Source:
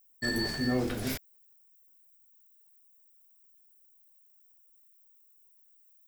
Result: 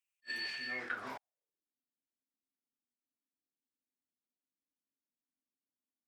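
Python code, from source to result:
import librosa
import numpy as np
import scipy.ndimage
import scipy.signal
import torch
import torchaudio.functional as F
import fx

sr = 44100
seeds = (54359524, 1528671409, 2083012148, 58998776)

y = fx.filter_sweep_bandpass(x, sr, from_hz=2600.0, to_hz=260.0, start_s=0.68, end_s=1.7, q=6.2)
y = fx.attack_slew(y, sr, db_per_s=540.0)
y = y * 10.0 ** (10.5 / 20.0)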